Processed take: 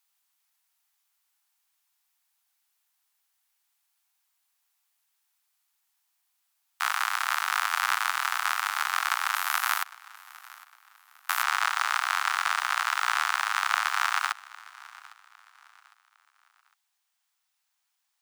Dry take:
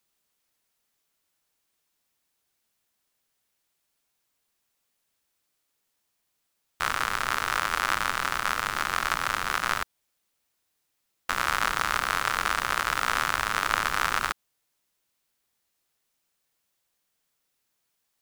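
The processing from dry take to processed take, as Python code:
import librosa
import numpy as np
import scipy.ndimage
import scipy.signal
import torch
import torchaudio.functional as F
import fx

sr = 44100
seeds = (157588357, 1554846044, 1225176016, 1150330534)

y = scipy.signal.sosfilt(scipy.signal.butter(12, 720.0, 'highpass', fs=sr, output='sos'), x)
y = fx.peak_eq(y, sr, hz=14000.0, db=fx.steps((0.0, 3.5), (9.35, 12.5), (11.43, -4.5)), octaves=0.78)
y = fx.echo_feedback(y, sr, ms=806, feedback_pct=35, wet_db=-21.0)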